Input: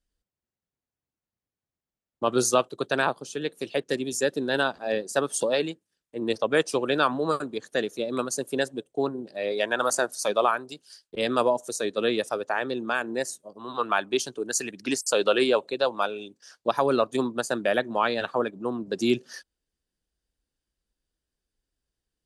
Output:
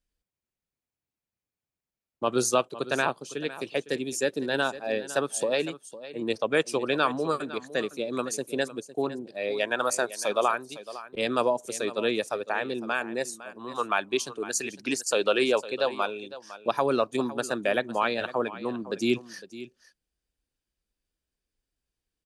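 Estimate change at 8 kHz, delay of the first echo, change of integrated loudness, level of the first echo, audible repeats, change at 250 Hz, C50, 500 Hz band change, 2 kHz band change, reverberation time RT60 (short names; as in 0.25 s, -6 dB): -2.0 dB, 0.507 s, -1.5 dB, -15.5 dB, 1, -2.0 dB, none, -2.0 dB, -1.0 dB, none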